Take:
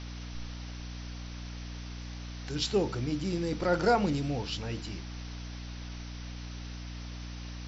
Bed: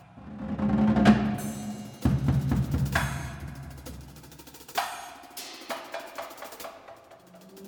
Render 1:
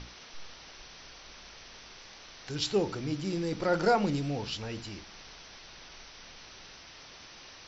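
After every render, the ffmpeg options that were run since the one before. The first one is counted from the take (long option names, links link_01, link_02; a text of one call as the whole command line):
ffmpeg -i in.wav -af "bandreject=frequency=60:width_type=h:width=6,bandreject=frequency=120:width_type=h:width=6,bandreject=frequency=180:width_type=h:width=6,bandreject=frequency=240:width_type=h:width=6,bandreject=frequency=300:width_type=h:width=6" out.wav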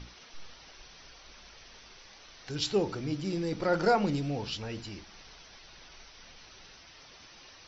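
ffmpeg -i in.wav -af "afftdn=noise_reduction=6:noise_floor=-51" out.wav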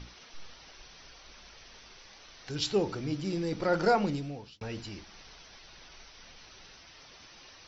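ffmpeg -i in.wav -filter_complex "[0:a]asplit=2[link_01][link_02];[link_01]atrim=end=4.61,asetpts=PTS-STARTPTS,afade=type=out:start_time=3.99:duration=0.62[link_03];[link_02]atrim=start=4.61,asetpts=PTS-STARTPTS,afade=type=in:duration=0.004:curve=hsin[link_04];[link_03][link_04]concat=n=2:v=0:a=1" out.wav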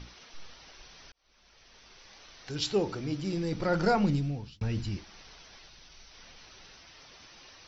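ffmpeg -i in.wav -filter_complex "[0:a]asettb=1/sr,asplit=3[link_01][link_02][link_03];[link_01]atrim=end=3.114[link_04];[link_02]atrim=start=3.11:end=4.97,asetpts=PTS-STARTPTS,afade=type=in:duration=0.004:curve=qsin,afade=type=out:start_time=1.856:duration=0.004:curve=qsin,asubboost=boost=8:cutoff=230[link_05];[link_03]atrim=start=4.966[link_06];[link_04][link_05]acrossfade=duration=0.004:curve1=hsin:curve2=qsin[link_07];[link_07][link_06]acrossfade=duration=0.004:curve1=qsin:curve2=hsin,asettb=1/sr,asplit=3[link_08][link_09][link_10];[link_08]atrim=end=5.684[link_11];[link_09]atrim=start=5.68:end=6.11,asetpts=PTS-STARTPTS,afade=type=in:duration=0.004:curve=qsin,afade=type=out:start_time=0.426:duration=0.004:curve=qsin,acrossover=split=220|3000[link_12][link_13][link_14];[link_13]acompressor=threshold=-59dB:ratio=6:attack=3.2:release=140:knee=2.83:detection=peak[link_15];[link_12][link_15][link_14]amix=inputs=3:normalize=0[link_16];[link_10]atrim=start=6.106[link_17];[link_11][link_16]acrossfade=duration=0.004:curve1=hsin:curve2=qsin[link_18];[link_18][link_17]acrossfade=duration=0.004:curve1=qsin:curve2=hsin,asplit=2[link_19][link_20];[link_19]atrim=end=1.12,asetpts=PTS-STARTPTS,afade=type=out:start_time=1.116:duration=0.004:curve=hsin[link_21];[link_20]atrim=start=1.12,asetpts=PTS-STARTPTS,afade=type=in:duration=1.05[link_22];[link_21][link_22]concat=n=2:v=0:a=1" out.wav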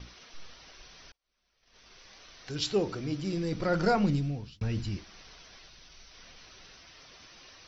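ffmpeg -i in.wav -af "agate=range=-15dB:threshold=-56dB:ratio=16:detection=peak,bandreject=frequency=860:width=12" out.wav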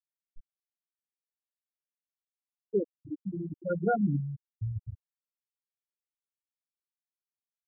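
ffmpeg -i in.wav -af "bandreject=frequency=610:width=12,afftfilt=real='re*gte(hypot(re,im),0.251)':imag='im*gte(hypot(re,im),0.251)':win_size=1024:overlap=0.75" out.wav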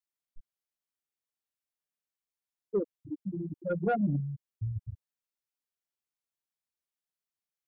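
ffmpeg -i in.wav -af "asoftclip=type=tanh:threshold=-19dB" out.wav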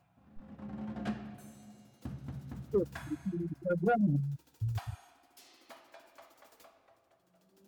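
ffmpeg -i in.wav -i bed.wav -filter_complex "[1:a]volume=-18.5dB[link_01];[0:a][link_01]amix=inputs=2:normalize=0" out.wav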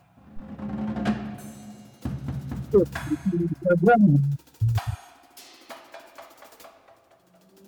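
ffmpeg -i in.wav -af "volume=11.5dB" out.wav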